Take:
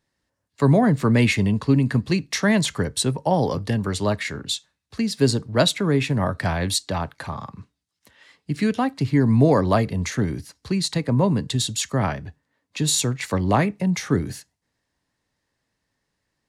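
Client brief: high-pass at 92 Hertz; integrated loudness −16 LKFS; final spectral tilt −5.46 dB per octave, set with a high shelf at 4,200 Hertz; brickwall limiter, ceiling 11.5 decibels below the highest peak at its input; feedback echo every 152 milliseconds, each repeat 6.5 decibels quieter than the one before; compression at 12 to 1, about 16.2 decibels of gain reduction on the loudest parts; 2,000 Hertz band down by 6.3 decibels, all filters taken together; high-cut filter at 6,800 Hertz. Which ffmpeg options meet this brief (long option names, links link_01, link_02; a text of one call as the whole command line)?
ffmpeg -i in.wav -af "highpass=92,lowpass=6800,equalizer=frequency=2000:width_type=o:gain=-6,highshelf=frequency=4200:gain=-8.5,acompressor=threshold=-29dB:ratio=12,alimiter=level_in=4dB:limit=-24dB:level=0:latency=1,volume=-4dB,aecho=1:1:152|304|456|608|760|912:0.473|0.222|0.105|0.0491|0.0231|0.0109,volume=20.5dB" out.wav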